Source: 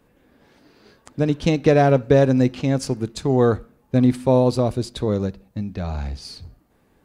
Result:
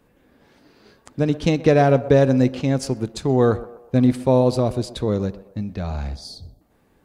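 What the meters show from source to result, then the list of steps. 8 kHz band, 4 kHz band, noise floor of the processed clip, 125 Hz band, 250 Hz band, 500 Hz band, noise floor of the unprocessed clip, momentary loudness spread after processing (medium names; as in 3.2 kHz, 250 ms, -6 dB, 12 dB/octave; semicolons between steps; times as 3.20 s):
0.0 dB, 0.0 dB, -60 dBFS, 0.0 dB, 0.0 dB, 0.0 dB, -61 dBFS, 14 LU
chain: spectral selection erased 6.16–6.61 s, 750–3200 Hz; band-passed feedback delay 125 ms, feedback 48%, band-pass 690 Hz, level -15 dB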